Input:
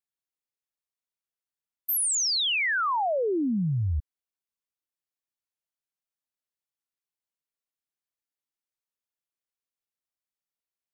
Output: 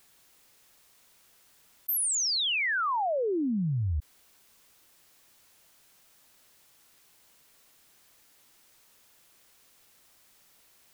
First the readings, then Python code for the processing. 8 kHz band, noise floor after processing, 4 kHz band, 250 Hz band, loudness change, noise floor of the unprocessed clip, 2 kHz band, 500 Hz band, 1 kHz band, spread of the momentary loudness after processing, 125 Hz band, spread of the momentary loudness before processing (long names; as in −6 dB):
−2.5 dB, −62 dBFS, −2.5 dB, −2.5 dB, −2.5 dB, below −85 dBFS, −2.5 dB, −2.5 dB, −2.5 dB, 8 LU, −2.5 dB, 8 LU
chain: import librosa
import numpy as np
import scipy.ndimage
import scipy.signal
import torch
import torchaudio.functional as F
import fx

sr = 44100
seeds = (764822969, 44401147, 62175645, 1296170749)

y = fx.env_flatten(x, sr, amount_pct=50)
y = y * 10.0 ** (-2.5 / 20.0)